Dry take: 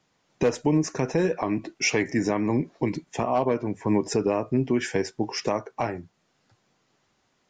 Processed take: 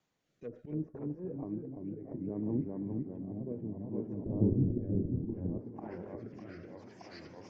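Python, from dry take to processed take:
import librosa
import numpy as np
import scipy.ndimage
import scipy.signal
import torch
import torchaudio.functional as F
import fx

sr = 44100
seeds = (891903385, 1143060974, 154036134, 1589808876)

y = fx.notch(x, sr, hz=5100.0, q=14.0)
y = fx.auto_swell(y, sr, attack_ms=189.0)
y = fx.echo_swing(y, sr, ms=1039, ratio=1.5, feedback_pct=60, wet_db=-14.0)
y = fx.echo_pitch(y, sr, ms=257, semitones=-1, count=3, db_per_echo=-3.0)
y = fx.tilt_eq(y, sr, slope=-4.5, at=(4.26, 5.58))
y = fx.env_lowpass_down(y, sr, base_hz=360.0, full_db=-26.0)
y = fx.rotary(y, sr, hz=0.65)
y = y * 10.0 ** (-8.0 / 20.0)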